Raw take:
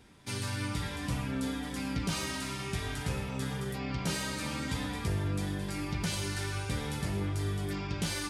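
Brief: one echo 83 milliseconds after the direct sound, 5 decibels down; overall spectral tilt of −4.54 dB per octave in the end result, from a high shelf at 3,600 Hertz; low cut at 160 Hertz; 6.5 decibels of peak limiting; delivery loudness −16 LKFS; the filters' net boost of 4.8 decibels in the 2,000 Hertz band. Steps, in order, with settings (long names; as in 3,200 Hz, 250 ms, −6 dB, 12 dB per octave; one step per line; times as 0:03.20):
high-pass filter 160 Hz
parametric band 2,000 Hz +8 dB
high-shelf EQ 3,600 Hz −7.5 dB
brickwall limiter −27 dBFS
single-tap delay 83 ms −5 dB
level +19.5 dB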